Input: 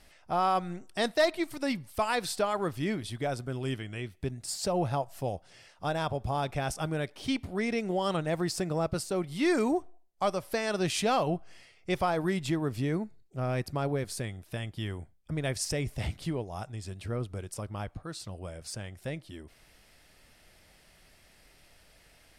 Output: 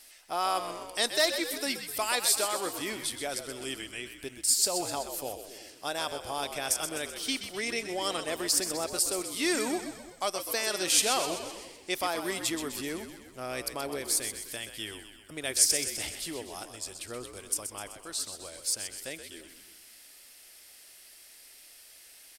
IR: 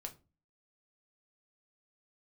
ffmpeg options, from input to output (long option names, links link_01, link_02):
-filter_complex "[0:a]asplit=2[link_01][link_02];[link_02]asplit=7[link_03][link_04][link_05][link_06][link_07][link_08][link_09];[link_03]adelay=127,afreqshift=-65,volume=-9dB[link_10];[link_04]adelay=254,afreqshift=-130,volume=-13.9dB[link_11];[link_05]adelay=381,afreqshift=-195,volume=-18.8dB[link_12];[link_06]adelay=508,afreqshift=-260,volume=-23.6dB[link_13];[link_07]adelay=635,afreqshift=-325,volume=-28.5dB[link_14];[link_08]adelay=762,afreqshift=-390,volume=-33.4dB[link_15];[link_09]adelay=889,afreqshift=-455,volume=-38.3dB[link_16];[link_10][link_11][link_12][link_13][link_14][link_15][link_16]amix=inputs=7:normalize=0[link_17];[link_01][link_17]amix=inputs=2:normalize=0,crystalizer=i=8:c=0,lowshelf=frequency=220:width_type=q:width=1.5:gain=-9.5,asplit=2[link_18][link_19];[link_19]adelay=338.2,volume=-19dB,highshelf=frequency=4000:gain=-7.61[link_20];[link_18][link_20]amix=inputs=2:normalize=0,volume=-7dB"